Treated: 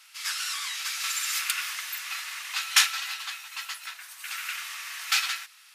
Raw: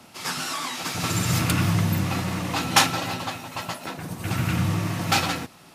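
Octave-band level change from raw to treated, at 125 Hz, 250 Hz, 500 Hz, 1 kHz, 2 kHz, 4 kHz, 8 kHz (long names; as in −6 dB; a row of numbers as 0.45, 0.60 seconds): below −40 dB, below −40 dB, below −30 dB, −10.5 dB, −1.0 dB, 0.0 dB, 0.0 dB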